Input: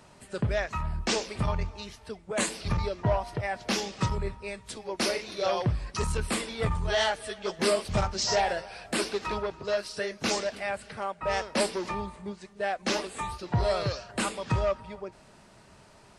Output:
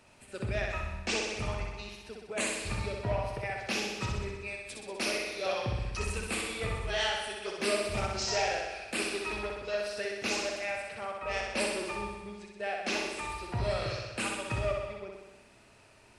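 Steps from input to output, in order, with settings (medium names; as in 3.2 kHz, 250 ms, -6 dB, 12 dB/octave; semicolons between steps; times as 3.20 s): graphic EQ with 31 bands 160 Hz -10 dB, 1 kHz -3 dB, 2.5 kHz +9 dB, 10 kHz +3 dB; on a send: flutter echo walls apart 10.8 m, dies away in 1.1 s; on the sum: trim -6.5 dB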